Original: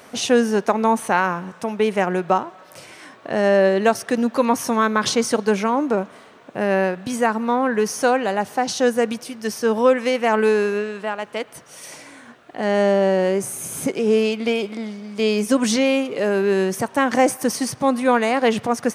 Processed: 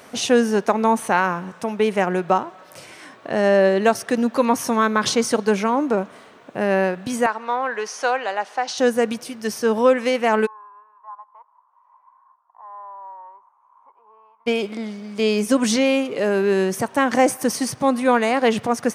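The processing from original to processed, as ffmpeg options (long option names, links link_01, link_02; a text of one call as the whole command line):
ffmpeg -i in.wav -filter_complex "[0:a]asettb=1/sr,asplit=3[link_01][link_02][link_03];[link_01]atrim=end=7.264[link_04];[link_02]atrim=start=7.26:end=8.78,asetpts=PTS-STARTPTS,afade=type=in:duration=0.004:curve=qsin,afade=type=out:start_time=1.516:duration=0.004:curve=qsin,highpass=630,lowpass=5500[link_05];[link_03]atrim=start=8.776[link_06];[link_04][link_05]acrossfade=duration=0.004:curve1=hsin:curve2=qsin[link_07];[link_07][link_06]acrossfade=duration=0.004:curve1=qsin:curve2=hsin,asplit=3[link_08][link_09][link_10];[link_08]afade=type=out:start_time=10.45:duration=0.02[link_11];[link_09]asuperpass=centerf=1000:order=4:qfactor=6,afade=type=in:start_time=10.45:duration=0.02,afade=type=out:start_time=14.46:duration=0.02[link_12];[link_10]afade=type=in:start_time=14.46:duration=0.02[link_13];[link_11][link_12][link_13]amix=inputs=3:normalize=0" out.wav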